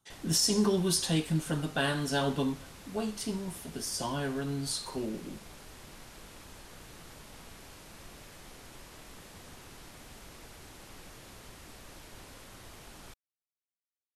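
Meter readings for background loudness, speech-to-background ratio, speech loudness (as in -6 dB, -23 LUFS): -50.0 LUFS, 19.0 dB, -31.0 LUFS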